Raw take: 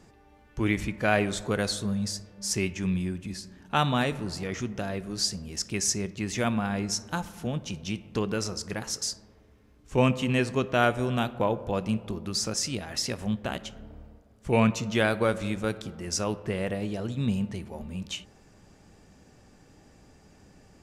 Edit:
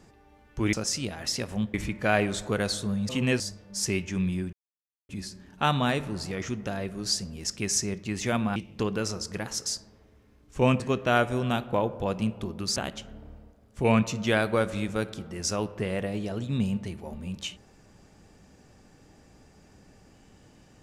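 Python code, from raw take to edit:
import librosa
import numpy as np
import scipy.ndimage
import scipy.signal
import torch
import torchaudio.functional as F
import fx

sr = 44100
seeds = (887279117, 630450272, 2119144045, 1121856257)

y = fx.edit(x, sr, fx.insert_silence(at_s=3.21, length_s=0.56),
    fx.cut(start_s=6.68, length_s=1.24),
    fx.move(start_s=10.16, length_s=0.31, to_s=2.08),
    fx.move(start_s=12.43, length_s=1.01, to_s=0.73), tone=tone)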